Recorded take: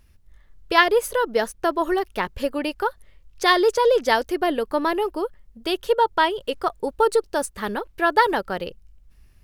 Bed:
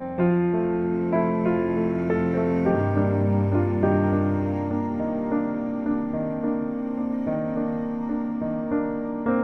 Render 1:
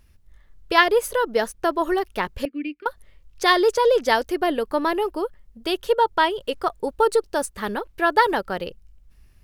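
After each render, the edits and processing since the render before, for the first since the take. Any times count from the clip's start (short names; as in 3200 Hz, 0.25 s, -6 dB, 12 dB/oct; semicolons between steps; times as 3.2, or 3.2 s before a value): 2.45–2.86 double band-pass 830 Hz, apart 3 oct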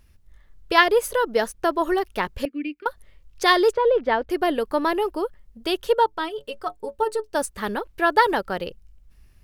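3.73–4.3 air absorption 470 m; 6.06–7.35 metallic resonator 65 Hz, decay 0.21 s, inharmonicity 0.03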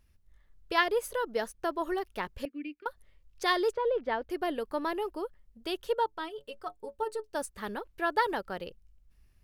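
gain -10 dB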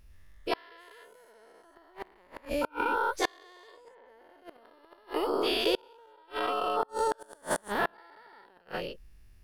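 spectral dilation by 0.48 s; flipped gate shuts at -15 dBFS, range -34 dB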